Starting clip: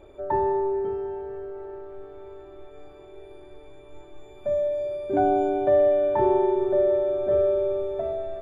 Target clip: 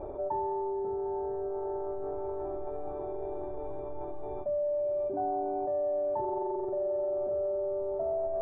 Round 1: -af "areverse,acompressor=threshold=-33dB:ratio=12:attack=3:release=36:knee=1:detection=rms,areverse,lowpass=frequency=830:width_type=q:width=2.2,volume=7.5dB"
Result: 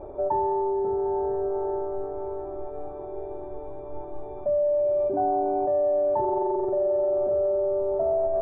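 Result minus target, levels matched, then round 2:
downward compressor: peak gain reduction −7.5 dB
-af "areverse,acompressor=threshold=-41dB:ratio=12:attack=3:release=36:knee=1:detection=rms,areverse,lowpass=frequency=830:width_type=q:width=2.2,volume=7.5dB"

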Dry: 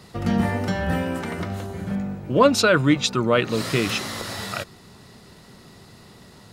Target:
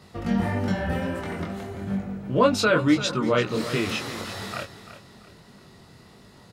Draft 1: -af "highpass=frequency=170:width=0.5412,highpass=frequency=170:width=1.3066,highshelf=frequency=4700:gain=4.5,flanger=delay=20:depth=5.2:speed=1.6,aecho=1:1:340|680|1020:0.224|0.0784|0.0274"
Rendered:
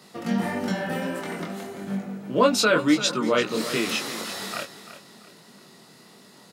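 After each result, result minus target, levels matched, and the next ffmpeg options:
125 Hz band −6.5 dB; 8,000 Hz band +5.5 dB
-af "highshelf=frequency=4700:gain=4.5,flanger=delay=20:depth=5.2:speed=1.6,aecho=1:1:340|680|1020:0.224|0.0784|0.0274"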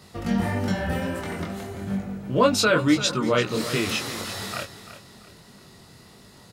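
8,000 Hz band +5.5 dB
-af "highshelf=frequency=4700:gain=-4,flanger=delay=20:depth=5.2:speed=1.6,aecho=1:1:340|680|1020:0.224|0.0784|0.0274"

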